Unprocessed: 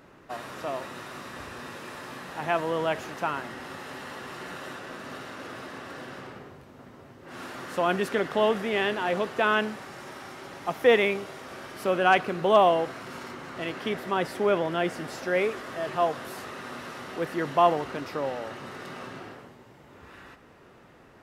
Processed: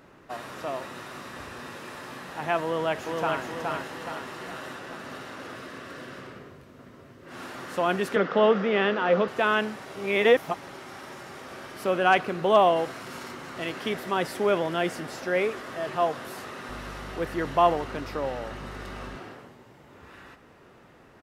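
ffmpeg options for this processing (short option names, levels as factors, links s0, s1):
-filter_complex "[0:a]asplit=2[s0][s1];[s1]afade=t=in:st=2.64:d=0.01,afade=t=out:st=3.45:d=0.01,aecho=0:1:420|840|1260|1680|2100|2520|2940:0.707946|0.353973|0.176986|0.0884932|0.0442466|0.0221233|0.0110617[s2];[s0][s2]amix=inputs=2:normalize=0,asettb=1/sr,asplit=3[s3][s4][s5];[s3]atrim=end=5.554[s6];[s4]atrim=start=5.55:end=7.32,asetpts=PTS-STARTPTS,afade=t=in:d=0.004:c=qsin,afade=t=out:st=1.766:d=0.004:c=qsin,equalizer=f=820:t=o:w=0.24:g=-10.5[s7];[s5]atrim=start=7.316[s8];[s6][s7]acrossfade=d=0.004:c1=hsin:c2=qsin[s9];[s9][s8]acrossfade=d=0.004:c1=qsin:c2=hsin,asettb=1/sr,asplit=3[s10][s11][s12];[s10]atrim=end=8.164[s13];[s11]atrim=start=8.16:end=9.28,asetpts=PTS-STARTPTS,afade=t=in:d=0.004:c=qsin,afade=t=out:st=1.116:d=0.004:c=qsin,highpass=f=160:w=0.5412,highpass=f=160:w=1.3066,equalizer=f=190:t=q:w=4:g=8,equalizer=f=500:t=q:w=4:g=9,equalizer=f=1300:t=q:w=4:g=8,equalizer=f=4200:t=q:w=4:g=-3,lowpass=f=5300:w=0.5412,lowpass=f=5300:w=1.3066[s14];[s12]atrim=start=9.276[s15];[s13][s14]acrossfade=d=0.004:c1=hsin:c2=qsin[s16];[s16][s15]acrossfade=d=0.004:c1=qsin:c2=hsin,asettb=1/sr,asplit=3[s17][s18][s19];[s17]atrim=end=12.764[s20];[s18]atrim=start=12.76:end=15,asetpts=PTS-STARTPTS,afade=t=in:d=0.004:c=qsin,afade=t=out:st=2.236:d=0.004:c=qsin,highshelf=f=4200:g=5.5[s21];[s19]atrim=start=14.996[s22];[s20][s21]acrossfade=d=0.004:c1=hsin:c2=qsin[s23];[s23][s22]acrossfade=d=0.004:c1=qsin:c2=hsin,asettb=1/sr,asplit=3[s24][s25][s26];[s24]atrim=end=16.694[s27];[s25]atrim=start=16.69:end=19.16,asetpts=PTS-STARTPTS,afade=t=in:d=0.004:c=qsin,afade=t=out:st=2.466:d=0.004:c=qsin,aeval=exprs='val(0)+0.00891*(sin(2*PI*50*n/s)+sin(2*PI*2*50*n/s)/2+sin(2*PI*3*50*n/s)/3+sin(2*PI*4*50*n/s)/4+sin(2*PI*5*50*n/s)/5)':c=same[s28];[s26]atrim=start=19.156[s29];[s27][s28]acrossfade=d=0.004:c1=hsin:c2=qsin[s30];[s30][s29]acrossfade=d=0.004:c1=qsin:c2=hsin,asplit=3[s31][s32][s33];[s31]atrim=end=9.862[s34];[s32]atrim=start=9.858:end=11.352,asetpts=PTS-STARTPTS,areverse[s35];[s33]atrim=start=11.348[s36];[s34][s35]acrossfade=d=0.004:c1=hsin:c2=hsin[s37];[s37][s36]acrossfade=d=0.004:c1=hsin:c2=hsin"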